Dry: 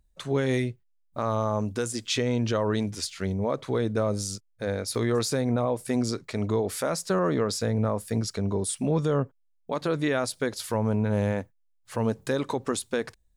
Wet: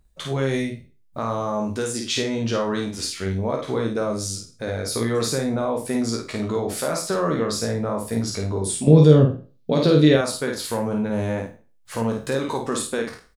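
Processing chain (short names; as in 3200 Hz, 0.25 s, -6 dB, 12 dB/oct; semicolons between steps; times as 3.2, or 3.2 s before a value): spectral trails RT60 0.33 s; in parallel at -1 dB: compressor, threshold -38 dBFS, peak gain reduction 16 dB; 8.87–10.16 on the sum: ten-band EQ 125 Hz +12 dB, 250 Hz +7 dB, 500 Hz +8 dB, 1000 Hz -5 dB, 4000 Hz +11 dB, 8000 Hz -3 dB; early reflections 13 ms -9 dB, 52 ms -4 dB; gain -1 dB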